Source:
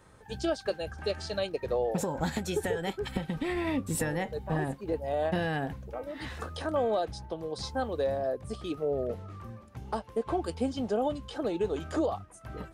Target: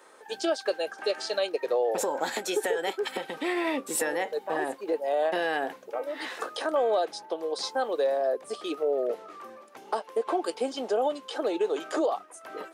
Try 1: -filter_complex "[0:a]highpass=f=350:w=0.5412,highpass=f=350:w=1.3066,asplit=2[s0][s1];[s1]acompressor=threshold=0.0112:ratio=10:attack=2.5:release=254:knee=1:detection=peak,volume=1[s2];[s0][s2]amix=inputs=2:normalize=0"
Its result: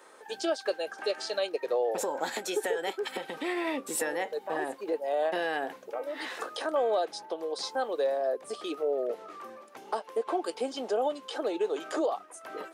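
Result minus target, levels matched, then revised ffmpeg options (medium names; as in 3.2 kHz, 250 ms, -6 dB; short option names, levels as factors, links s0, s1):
compression: peak gain reduction +9 dB
-filter_complex "[0:a]highpass=f=350:w=0.5412,highpass=f=350:w=1.3066,asplit=2[s0][s1];[s1]acompressor=threshold=0.0355:ratio=10:attack=2.5:release=254:knee=1:detection=peak,volume=1[s2];[s0][s2]amix=inputs=2:normalize=0"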